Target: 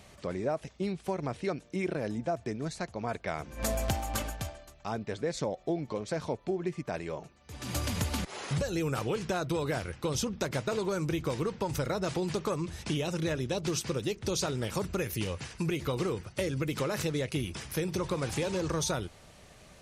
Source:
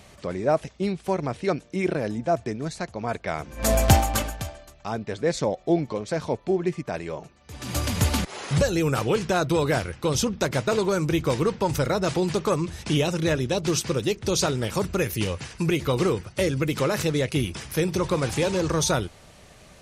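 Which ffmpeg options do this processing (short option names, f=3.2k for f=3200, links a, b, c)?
-af "acompressor=threshold=-23dB:ratio=6,volume=-4.5dB"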